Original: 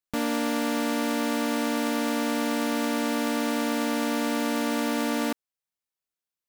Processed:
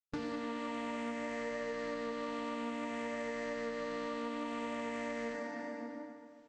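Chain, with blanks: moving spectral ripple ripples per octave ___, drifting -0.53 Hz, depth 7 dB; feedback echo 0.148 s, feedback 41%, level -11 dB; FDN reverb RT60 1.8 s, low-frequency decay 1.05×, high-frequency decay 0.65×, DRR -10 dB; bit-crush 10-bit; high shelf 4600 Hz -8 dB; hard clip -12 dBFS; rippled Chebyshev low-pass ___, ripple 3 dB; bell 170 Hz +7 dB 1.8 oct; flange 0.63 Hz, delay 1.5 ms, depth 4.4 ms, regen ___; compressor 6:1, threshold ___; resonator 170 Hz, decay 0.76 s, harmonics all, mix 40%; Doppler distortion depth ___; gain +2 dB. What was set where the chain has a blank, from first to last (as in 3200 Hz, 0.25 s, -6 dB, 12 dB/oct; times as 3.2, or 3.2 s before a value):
0.59, 7900 Hz, +71%, -36 dBFS, 0.17 ms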